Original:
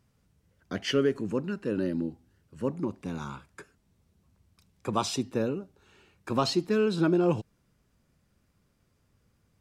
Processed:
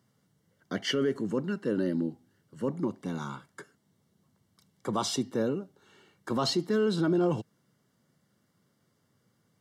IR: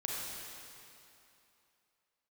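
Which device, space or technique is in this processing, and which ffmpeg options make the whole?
PA system with an anti-feedback notch: -af "highpass=frequency=120:width=0.5412,highpass=frequency=120:width=1.3066,asuperstop=centerf=2500:order=20:qfactor=6.5,alimiter=limit=-20dB:level=0:latency=1:release=13,volume=1dB"

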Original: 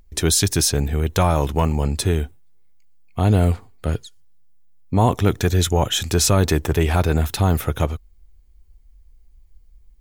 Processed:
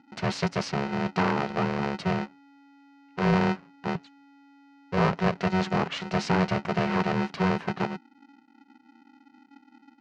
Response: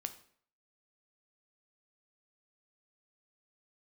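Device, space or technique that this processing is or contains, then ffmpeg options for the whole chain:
ring modulator pedal into a guitar cabinet: -af "aeval=exprs='val(0)*sgn(sin(2*PI*280*n/s))':channel_layout=same,highpass=110,equalizer=frequency=170:width_type=q:width=4:gain=5,equalizer=frequency=340:width_type=q:width=4:gain=-7,equalizer=frequency=3500:width_type=q:width=4:gain=-10,lowpass=frequency=4300:width=0.5412,lowpass=frequency=4300:width=1.3066,volume=-7dB"

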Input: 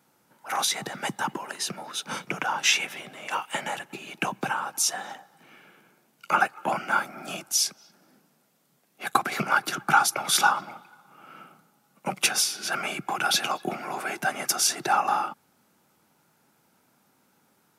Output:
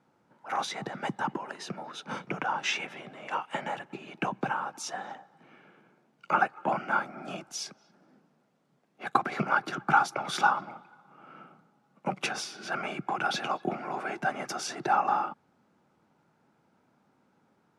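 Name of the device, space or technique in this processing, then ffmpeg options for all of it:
through cloth: -af "lowpass=6900,highshelf=frequency=2300:gain=-13.5"

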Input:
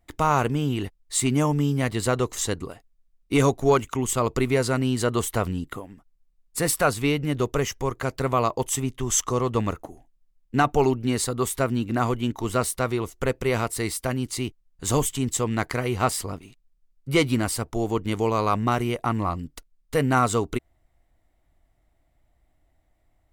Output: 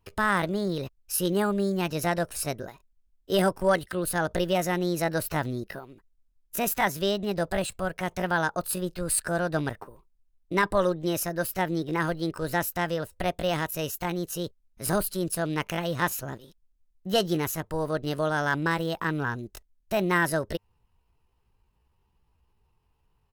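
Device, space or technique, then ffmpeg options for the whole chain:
chipmunk voice: -af "asetrate=60591,aresample=44100,atempo=0.727827,volume=-3.5dB"

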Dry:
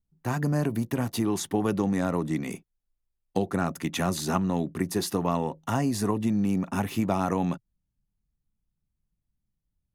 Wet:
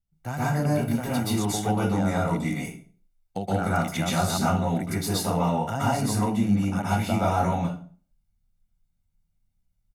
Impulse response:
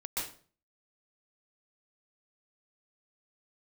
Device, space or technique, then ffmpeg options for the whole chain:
microphone above a desk: -filter_complex "[0:a]asettb=1/sr,asplit=3[link_01][link_02][link_03];[link_01]atrim=end=6.414[link_04];[link_02]atrim=start=6.41:end=7.03,asetpts=PTS-STARTPTS,afade=type=in:duration=0.004:curve=qsin,afade=type=out:start_time=0.616:duration=0.004:curve=qsin,lowpass=12000[link_05];[link_03]atrim=start=7.026[link_06];[link_04][link_05]acrossfade=duration=0.004:curve1=hsin:curve2=qsin[link_07];[link_07][link_06]acrossfade=duration=0.004:curve1=qsin:curve2=hsin,aecho=1:1:1.4:0.53[link_08];[1:a]atrim=start_sample=2205[link_09];[link_08][link_09]afir=irnorm=-1:irlink=0"

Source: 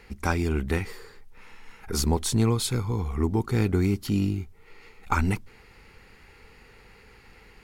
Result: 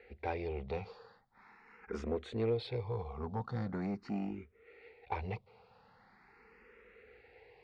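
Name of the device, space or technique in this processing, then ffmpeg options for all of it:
barber-pole phaser into a guitar amplifier: -filter_complex "[0:a]asplit=2[link_01][link_02];[link_02]afreqshift=0.42[link_03];[link_01][link_03]amix=inputs=2:normalize=1,asoftclip=type=tanh:threshold=-22dB,highpass=85,equalizer=frequency=88:width_type=q:width=4:gain=-7,equalizer=frequency=150:width_type=q:width=4:gain=-7,equalizer=frequency=290:width_type=q:width=4:gain=-7,equalizer=frequency=480:width_type=q:width=4:gain=8,equalizer=frequency=740:width_type=q:width=4:gain=6,equalizer=frequency=3100:width_type=q:width=4:gain=-7,lowpass=frequency=3800:width=0.5412,lowpass=frequency=3800:width=1.3066,volume=-5.5dB"

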